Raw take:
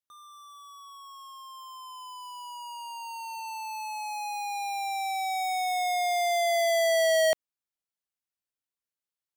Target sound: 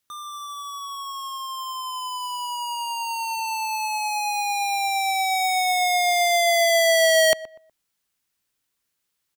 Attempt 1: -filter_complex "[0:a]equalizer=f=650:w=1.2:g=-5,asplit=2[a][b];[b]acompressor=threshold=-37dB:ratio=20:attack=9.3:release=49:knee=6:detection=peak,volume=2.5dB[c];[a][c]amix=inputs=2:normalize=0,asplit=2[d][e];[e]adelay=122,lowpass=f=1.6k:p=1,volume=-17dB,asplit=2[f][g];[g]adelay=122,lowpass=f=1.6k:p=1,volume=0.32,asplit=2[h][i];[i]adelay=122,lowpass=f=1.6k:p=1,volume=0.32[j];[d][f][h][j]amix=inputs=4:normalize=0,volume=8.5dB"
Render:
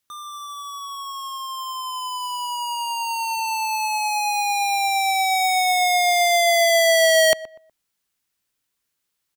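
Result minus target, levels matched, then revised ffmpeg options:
compressor: peak gain reduction -8.5 dB
-filter_complex "[0:a]equalizer=f=650:w=1.2:g=-5,asplit=2[a][b];[b]acompressor=threshold=-46dB:ratio=20:attack=9.3:release=49:knee=6:detection=peak,volume=2.5dB[c];[a][c]amix=inputs=2:normalize=0,asplit=2[d][e];[e]adelay=122,lowpass=f=1.6k:p=1,volume=-17dB,asplit=2[f][g];[g]adelay=122,lowpass=f=1.6k:p=1,volume=0.32,asplit=2[h][i];[i]adelay=122,lowpass=f=1.6k:p=1,volume=0.32[j];[d][f][h][j]amix=inputs=4:normalize=0,volume=8.5dB"

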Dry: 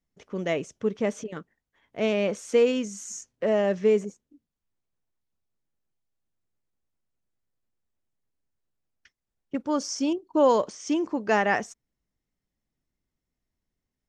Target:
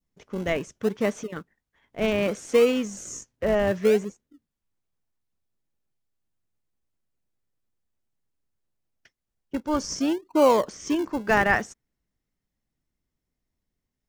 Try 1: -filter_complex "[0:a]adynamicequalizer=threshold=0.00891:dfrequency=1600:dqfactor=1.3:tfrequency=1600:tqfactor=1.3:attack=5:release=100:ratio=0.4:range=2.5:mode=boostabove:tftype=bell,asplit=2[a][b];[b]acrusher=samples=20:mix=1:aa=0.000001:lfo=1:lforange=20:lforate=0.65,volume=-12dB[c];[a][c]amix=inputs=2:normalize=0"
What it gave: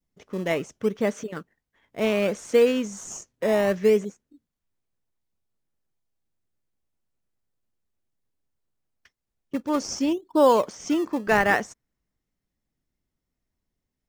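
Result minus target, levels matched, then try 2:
decimation with a swept rate: distortion -11 dB
-filter_complex "[0:a]adynamicequalizer=threshold=0.00891:dfrequency=1600:dqfactor=1.3:tfrequency=1600:tqfactor=1.3:attack=5:release=100:ratio=0.4:range=2.5:mode=boostabove:tftype=bell,asplit=2[a][b];[b]acrusher=samples=49:mix=1:aa=0.000001:lfo=1:lforange=49:lforate=0.65,volume=-12dB[c];[a][c]amix=inputs=2:normalize=0"

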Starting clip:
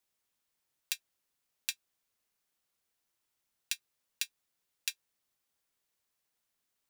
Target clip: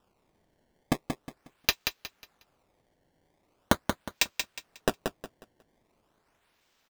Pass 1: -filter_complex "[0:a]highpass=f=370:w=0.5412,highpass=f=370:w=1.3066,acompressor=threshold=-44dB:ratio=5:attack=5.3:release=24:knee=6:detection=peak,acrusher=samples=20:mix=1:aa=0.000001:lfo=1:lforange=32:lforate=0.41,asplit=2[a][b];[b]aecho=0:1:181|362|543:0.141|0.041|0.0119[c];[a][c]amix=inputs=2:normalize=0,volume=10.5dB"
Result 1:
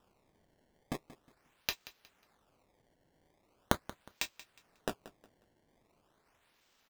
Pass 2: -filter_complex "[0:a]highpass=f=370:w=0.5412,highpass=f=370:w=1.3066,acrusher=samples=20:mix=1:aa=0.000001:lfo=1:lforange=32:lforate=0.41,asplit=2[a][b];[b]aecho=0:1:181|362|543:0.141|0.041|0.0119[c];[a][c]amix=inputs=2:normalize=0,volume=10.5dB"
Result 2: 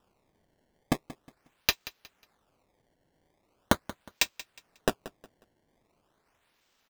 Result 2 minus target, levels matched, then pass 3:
echo-to-direct -11 dB
-filter_complex "[0:a]highpass=f=370:w=0.5412,highpass=f=370:w=1.3066,acrusher=samples=20:mix=1:aa=0.000001:lfo=1:lforange=32:lforate=0.41,asplit=2[a][b];[b]aecho=0:1:181|362|543|724:0.501|0.145|0.0421|0.0122[c];[a][c]amix=inputs=2:normalize=0,volume=10.5dB"

